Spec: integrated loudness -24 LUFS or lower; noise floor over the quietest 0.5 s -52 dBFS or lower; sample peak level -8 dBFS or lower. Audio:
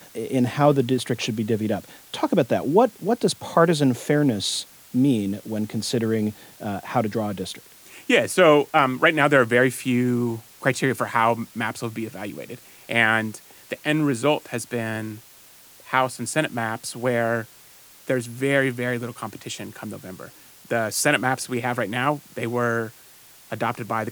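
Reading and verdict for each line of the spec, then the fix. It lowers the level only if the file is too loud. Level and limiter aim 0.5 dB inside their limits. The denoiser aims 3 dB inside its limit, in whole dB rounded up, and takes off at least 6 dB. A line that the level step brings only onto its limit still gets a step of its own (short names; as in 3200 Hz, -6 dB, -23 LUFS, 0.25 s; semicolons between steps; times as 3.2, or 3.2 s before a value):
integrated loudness -22.5 LUFS: fail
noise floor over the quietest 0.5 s -49 dBFS: fail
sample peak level -3.5 dBFS: fail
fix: denoiser 6 dB, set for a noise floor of -49 dBFS; gain -2 dB; limiter -8.5 dBFS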